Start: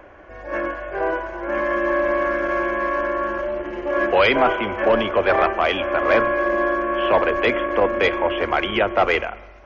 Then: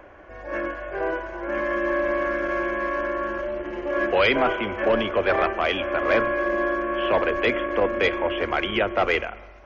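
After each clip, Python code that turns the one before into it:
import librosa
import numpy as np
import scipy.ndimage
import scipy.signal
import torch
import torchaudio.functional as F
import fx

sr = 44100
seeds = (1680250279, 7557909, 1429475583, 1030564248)

y = fx.dynamic_eq(x, sr, hz=880.0, q=1.3, threshold_db=-32.0, ratio=4.0, max_db=-4)
y = y * 10.0 ** (-2.0 / 20.0)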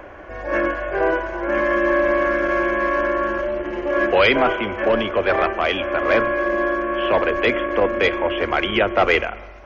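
y = fx.rider(x, sr, range_db=4, speed_s=2.0)
y = y * 10.0 ** (4.0 / 20.0)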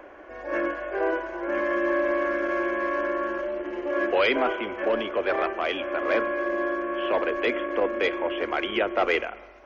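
y = fx.low_shelf_res(x, sr, hz=210.0, db=-9.5, q=1.5)
y = y * 10.0 ** (-7.5 / 20.0)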